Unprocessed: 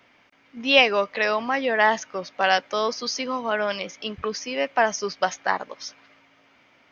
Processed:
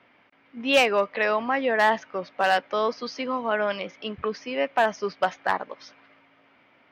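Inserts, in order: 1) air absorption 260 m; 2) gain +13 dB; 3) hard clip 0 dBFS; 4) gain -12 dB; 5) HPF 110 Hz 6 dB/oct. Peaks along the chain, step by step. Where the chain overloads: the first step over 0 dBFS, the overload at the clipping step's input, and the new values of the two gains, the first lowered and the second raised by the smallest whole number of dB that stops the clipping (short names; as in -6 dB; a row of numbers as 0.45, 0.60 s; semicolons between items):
-5.0, +8.0, 0.0, -12.0, -10.0 dBFS; step 2, 8.0 dB; step 2 +5 dB, step 4 -4 dB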